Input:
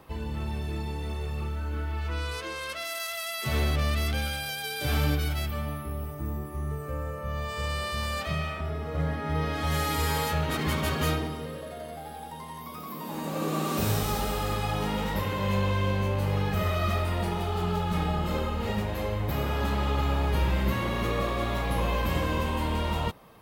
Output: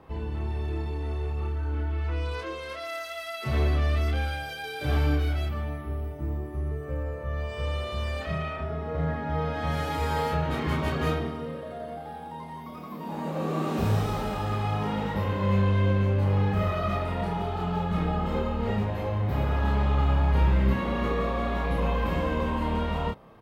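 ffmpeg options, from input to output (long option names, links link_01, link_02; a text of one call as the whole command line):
ffmpeg -i in.wav -filter_complex "[0:a]lowpass=frequency=1600:poles=1,asplit=2[link_01][link_02];[link_02]adelay=30,volume=-2.5dB[link_03];[link_01][link_03]amix=inputs=2:normalize=0" out.wav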